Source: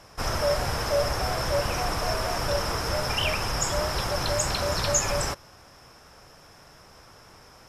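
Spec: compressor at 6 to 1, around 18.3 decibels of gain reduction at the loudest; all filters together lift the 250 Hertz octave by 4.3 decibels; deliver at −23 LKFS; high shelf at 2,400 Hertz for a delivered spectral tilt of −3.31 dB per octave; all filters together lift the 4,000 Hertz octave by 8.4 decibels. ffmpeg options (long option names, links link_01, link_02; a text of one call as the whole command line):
ffmpeg -i in.wav -af "equalizer=frequency=250:width_type=o:gain=6,highshelf=frequency=2400:gain=6,equalizer=frequency=4000:width_type=o:gain=5.5,acompressor=threshold=-35dB:ratio=6,volume=13.5dB" out.wav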